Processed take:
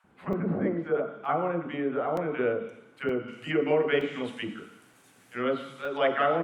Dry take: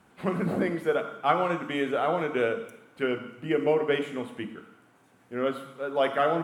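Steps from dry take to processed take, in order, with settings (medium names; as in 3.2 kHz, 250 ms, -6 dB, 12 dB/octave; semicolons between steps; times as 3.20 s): low-pass that closes with the level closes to 2.1 kHz, closed at -24.5 dBFS; treble shelf 2.2 kHz -11 dB, from 2.28 s -2.5 dB, from 3.28 s +11.5 dB; bands offset in time highs, lows 40 ms, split 850 Hz; crackling interface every 0.92 s, samples 128, zero, from 0.33 s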